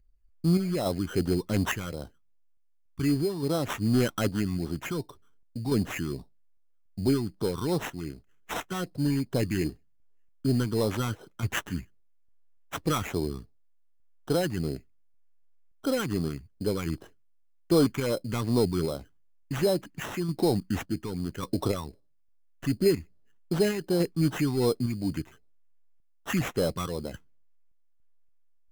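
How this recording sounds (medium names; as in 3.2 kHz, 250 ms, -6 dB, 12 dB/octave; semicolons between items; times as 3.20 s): phasing stages 12, 2.6 Hz, lowest notch 560–2400 Hz; aliases and images of a low sample rate 4.6 kHz, jitter 0%; random-step tremolo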